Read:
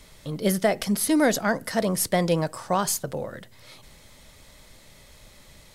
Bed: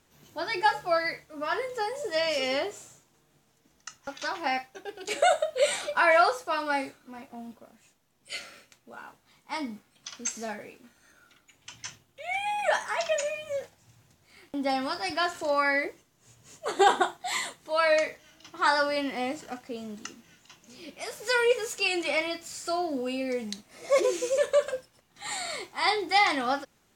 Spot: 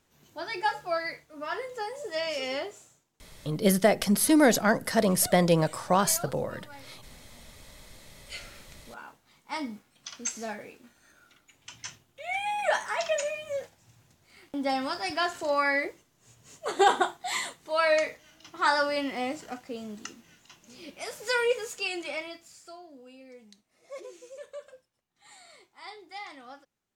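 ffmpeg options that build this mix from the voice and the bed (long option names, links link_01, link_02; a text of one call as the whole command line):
ffmpeg -i stem1.wav -i stem2.wav -filter_complex "[0:a]adelay=3200,volume=0.5dB[link_01];[1:a]volume=16dB,afade=type=out:start_time=2.61:duration=0.71:silence=0.149624,afade=type=in:start_time=7.78:duration=0.91:silence=0.1,afade=type=out:start_time=21.09:duration=1.71:silence=0.11885[link_02];[link_01][link_02]amix=inputs=2:normalize=0" out.wav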